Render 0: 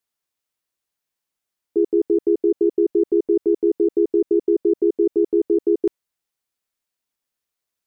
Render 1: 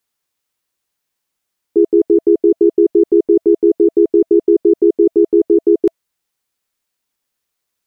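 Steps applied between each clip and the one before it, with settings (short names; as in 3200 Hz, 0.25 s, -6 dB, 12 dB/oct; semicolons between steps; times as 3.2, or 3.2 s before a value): notch 660 Hz, Q 17; gain +7 dB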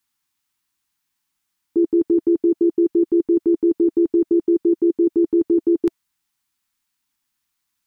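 band shelf 520 Hz -15 dB 1 oct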